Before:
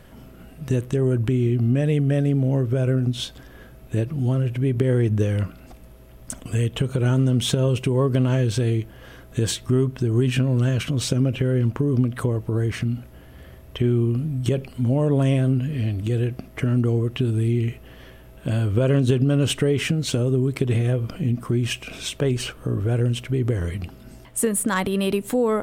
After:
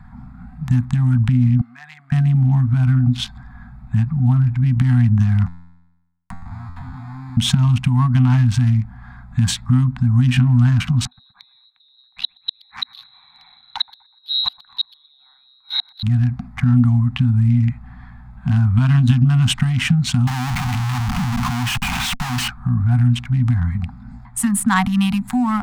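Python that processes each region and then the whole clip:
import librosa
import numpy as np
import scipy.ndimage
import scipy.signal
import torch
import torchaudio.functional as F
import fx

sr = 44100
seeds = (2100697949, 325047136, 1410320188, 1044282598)

y = fx.chain(x, sr, fx.highpass(hz=1300.0, slope=12),
    fx.high_shelf(hz=5800.0, db=-7.0), at=(1.61, 2.12))
y = fx.chain(y, sr, fx.schmitt(flips_db=-30.5),
    fx.comb_fb(f0_hz=87.0, decay_s=0.72, harmonics='all', damping=0.0, mix_pct=90),
    fx.band_squash(depth_pct=70), at=(5.46, 7.37))
y = fx.chain(y, sr, fx.gate_flip(shuts_db=-16.0, range_db=-28),
    fx.echo_filtered(ms=123, feedback_pct=50, hz=3100.0, wet_db=-16.5),
    fx.freq_invert(carrier_hz=4000), at=(11.05, 16.03))
y = fx.chain(y, sr, fx.low_shelf(hz=170.0, db=-8.0),
    fx.schmitt(flips_db=-39.0), at=(20.27, 22.48))
y = fx.wiener(y, sr, points=15)
y = scipy.signal.sosfilt(scipy.signal.cheby1(5, 1.0, [250.0, 730.0], 'bandstop', fs=sr, output='sos'), y)
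y = fx.high_shelf(y, sr, hz=7200.0, db=-8.5)
y = F.gain(torch.from_numpy(y), 8.0).numpy()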